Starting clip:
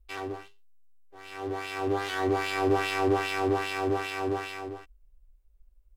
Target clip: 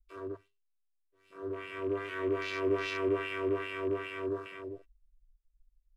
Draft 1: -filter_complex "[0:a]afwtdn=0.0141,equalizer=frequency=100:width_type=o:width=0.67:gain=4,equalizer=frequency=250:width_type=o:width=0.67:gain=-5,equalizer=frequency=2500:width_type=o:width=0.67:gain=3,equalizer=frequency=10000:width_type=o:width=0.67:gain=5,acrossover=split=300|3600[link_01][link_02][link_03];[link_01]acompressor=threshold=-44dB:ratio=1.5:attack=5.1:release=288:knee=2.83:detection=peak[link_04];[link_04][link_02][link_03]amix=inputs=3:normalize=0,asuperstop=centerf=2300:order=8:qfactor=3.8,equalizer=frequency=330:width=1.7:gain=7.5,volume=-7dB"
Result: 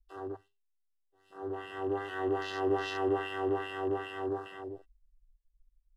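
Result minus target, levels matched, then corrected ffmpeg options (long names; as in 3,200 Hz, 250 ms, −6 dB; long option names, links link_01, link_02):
1,000 Hz band +4.5 dB
-filter_complex "[0:a]afwtdn=0.0141,equalizer=frequency=100:width_type=o:width=0.67:gain=4,equalizer=frequency=250:width_type=o:width=0.67:gain=-5,equalizer=frequency=2500:width_type=o:width=0.67:gain=3,equalizer=frequency=10000:width_type=o:width=0.67:gain=5,acrossover=split=300|3600[link_01][link_02][link_03];[link_01]acompressor=threshold=-44dB:ratio=1.5:attack=5.1:release=288:knee=2.83:detection=peak[link_04];[link_04][link_02][link_03]amix=inputs=3:normalize=0,asuperstop=centerf=800:order=8:qfactor=3.8,equalizer=frequency=330:width=1.7:gain=7.5,volume=-7dB"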